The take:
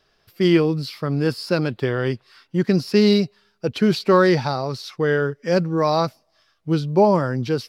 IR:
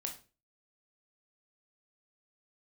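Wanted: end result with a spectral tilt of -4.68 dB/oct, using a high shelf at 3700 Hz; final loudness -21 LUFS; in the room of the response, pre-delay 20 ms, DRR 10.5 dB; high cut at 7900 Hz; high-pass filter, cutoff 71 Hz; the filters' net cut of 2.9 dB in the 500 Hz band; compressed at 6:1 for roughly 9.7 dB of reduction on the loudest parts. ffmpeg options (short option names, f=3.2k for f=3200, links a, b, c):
-filter_complex "[0:a]highpass=71,lowpass=7.9k,equalizer=f=500:t=o:g=-4,highshelf=f=3.7k:g=7.5,acompressor=threshold=-23dB:ratio=6,asplit=2[a][b];[1:a]atrim=start_sample=2205,adelay=20[c];[b][c]afir=irnorm=-1:irlink=0,volume=-9.5dB[d];[a][d]amix=inputs=2:normalize=0,volume=7dB"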